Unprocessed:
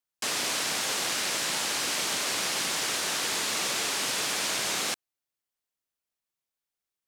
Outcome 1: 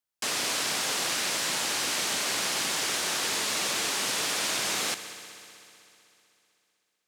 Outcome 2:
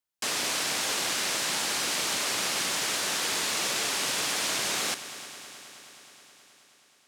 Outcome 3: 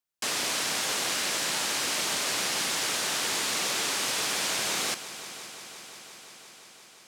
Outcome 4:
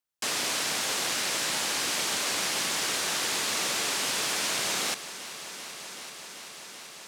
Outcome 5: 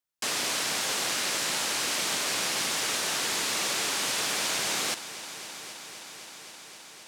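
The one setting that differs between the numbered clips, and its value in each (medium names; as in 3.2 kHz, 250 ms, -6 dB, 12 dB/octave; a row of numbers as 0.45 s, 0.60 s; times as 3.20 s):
multi-head delay, time: 63 ms, 106 ms, 174 ms, 385 ms, 261 ms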